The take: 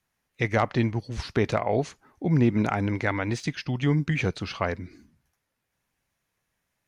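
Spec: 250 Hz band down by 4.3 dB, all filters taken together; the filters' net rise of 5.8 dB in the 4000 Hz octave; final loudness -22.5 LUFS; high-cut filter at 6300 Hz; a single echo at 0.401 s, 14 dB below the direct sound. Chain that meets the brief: LPF 6300 Hz; bell 250 Hz -6 dB; bell 4000 Hz +8 dB; echo 0.401 s -14 dB; gain +5 dB

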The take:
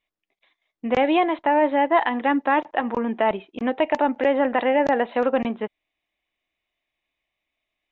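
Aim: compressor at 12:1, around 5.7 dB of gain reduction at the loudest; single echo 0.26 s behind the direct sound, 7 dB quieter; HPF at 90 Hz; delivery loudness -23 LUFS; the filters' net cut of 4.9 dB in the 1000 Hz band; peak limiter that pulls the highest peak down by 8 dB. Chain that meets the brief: HPF 90 Hz; bell 1000 Hz -6.5 dB; compressor 12:1, threshold -22 dBFS; limiter -20 dBFS; echo 0.26 s -7 dB; gain +7 dB

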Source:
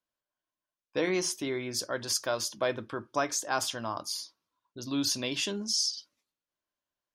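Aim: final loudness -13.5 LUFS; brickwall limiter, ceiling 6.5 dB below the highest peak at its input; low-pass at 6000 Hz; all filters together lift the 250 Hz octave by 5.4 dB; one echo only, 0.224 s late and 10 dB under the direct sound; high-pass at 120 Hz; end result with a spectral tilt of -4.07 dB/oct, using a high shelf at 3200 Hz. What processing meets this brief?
HPF 120 Hz; LPF 6000 Hz; bell 250 Hz +7 dB; high shelf 3200 Hz -8 dB; limiter -21.5 dBFS; echo 0.224 s -10 dB; gain +20 dB

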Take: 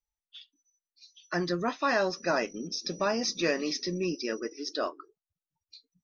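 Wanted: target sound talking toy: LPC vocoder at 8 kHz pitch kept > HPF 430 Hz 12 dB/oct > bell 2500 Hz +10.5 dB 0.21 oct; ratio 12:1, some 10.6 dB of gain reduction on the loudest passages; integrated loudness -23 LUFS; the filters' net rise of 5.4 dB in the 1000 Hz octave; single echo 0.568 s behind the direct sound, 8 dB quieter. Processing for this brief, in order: bell 1000 Hz +7 dB; compressor 12:1, threshold -29 dBFS; echo 0.568 s -8 dB; LPC vocoder at 8 kHz pitch kept; HPF 430 Hz 12 dB/oct; bell 2500 Hz +10.5 dB 0.21 oct; gain +14 dB

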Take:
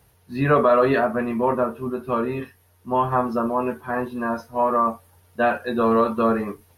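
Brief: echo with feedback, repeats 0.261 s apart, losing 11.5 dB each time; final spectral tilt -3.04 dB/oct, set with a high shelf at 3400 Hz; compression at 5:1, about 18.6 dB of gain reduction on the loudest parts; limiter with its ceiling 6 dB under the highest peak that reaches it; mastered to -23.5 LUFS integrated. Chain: high shelf 3400 Hz +6 dB; compressor 5:1, threshold -35 dBFS; limiter -28.5 dBFS; feedback echo 0.261 s, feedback 27%, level -11.5 dB; gain +15 dB

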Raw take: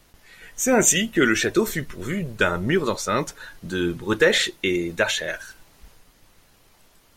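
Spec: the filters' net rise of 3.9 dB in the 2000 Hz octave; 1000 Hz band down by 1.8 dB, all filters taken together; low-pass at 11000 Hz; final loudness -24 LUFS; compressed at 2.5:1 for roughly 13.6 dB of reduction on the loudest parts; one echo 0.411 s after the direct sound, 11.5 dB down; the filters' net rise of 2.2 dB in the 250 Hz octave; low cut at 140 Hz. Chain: HPF 140 Hz; LPF 11000 Hz; bell 250 Hz +4 dB; bell 1000 Hz -6.5 dB; bell 2000 Hz +7 dB; compressor 2.5:1, threshold -33 dBFS; echo 0.411 s -11.5 dB; gain +7.5 dB

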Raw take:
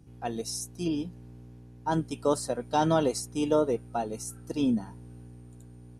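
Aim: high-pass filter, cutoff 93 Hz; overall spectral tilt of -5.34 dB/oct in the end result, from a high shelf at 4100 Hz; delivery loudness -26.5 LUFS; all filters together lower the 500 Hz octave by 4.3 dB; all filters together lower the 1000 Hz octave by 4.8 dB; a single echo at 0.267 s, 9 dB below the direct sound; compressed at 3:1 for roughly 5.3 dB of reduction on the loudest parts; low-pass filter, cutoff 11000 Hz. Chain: HPF 93 Hz; LPF 11000 Hz; bell 500 Hz -4 dB; bell 1000 Hz -4.5 dB; high shelf 4100 Hz -4.5 dB; compressor 3:1, threshold -30 dBFS; echo 0.267 s -9 dB; gain +9.5 dB

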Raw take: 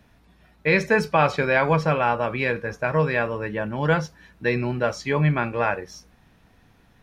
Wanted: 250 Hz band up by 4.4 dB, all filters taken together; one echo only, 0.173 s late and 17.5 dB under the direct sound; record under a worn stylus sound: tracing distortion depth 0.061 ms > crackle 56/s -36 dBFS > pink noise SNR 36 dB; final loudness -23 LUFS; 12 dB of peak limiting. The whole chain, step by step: bell 250 Hz +6.5 dB; limiter -17.5 dBFS; echo 0.173 s -17.5 dB; tracing distortion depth 0.061 ms; crackle 56/s -36 dBFS; pink noise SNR 36 dB; gain +4.5 dB

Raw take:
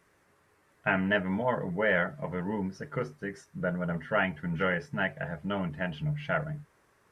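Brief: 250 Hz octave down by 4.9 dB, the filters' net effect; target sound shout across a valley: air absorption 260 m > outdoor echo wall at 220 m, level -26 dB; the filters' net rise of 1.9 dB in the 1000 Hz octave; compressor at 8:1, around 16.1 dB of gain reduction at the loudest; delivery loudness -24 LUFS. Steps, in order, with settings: bell 250 Hz -8 dB; bell 1000 Hz +5 dB; compressor 8:1, threshold -38 dBFS; air absorption 260 m; outdoor echo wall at 220 m, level -26 dB; gain +20 dB

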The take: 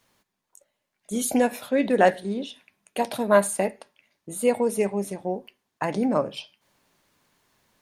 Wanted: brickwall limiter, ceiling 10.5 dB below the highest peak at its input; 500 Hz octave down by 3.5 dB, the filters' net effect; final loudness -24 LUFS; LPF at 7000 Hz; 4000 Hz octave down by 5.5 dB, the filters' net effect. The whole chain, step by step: LPF 7000 Hz; bell 500 Hz -4 dB; bell 4000 Hz -7.5 dB; gain +6 dB; limiter -10.5 dBFS

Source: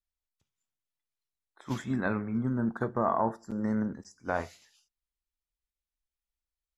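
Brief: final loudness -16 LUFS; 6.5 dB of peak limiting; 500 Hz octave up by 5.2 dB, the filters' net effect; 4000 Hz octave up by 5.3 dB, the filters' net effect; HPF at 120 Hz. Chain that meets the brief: HPF 120 Hz; bell 500 Hz +6.5 dB; bell 4000 Hz +6.5 dB; gain +16 dB; limiter -3 dBFS

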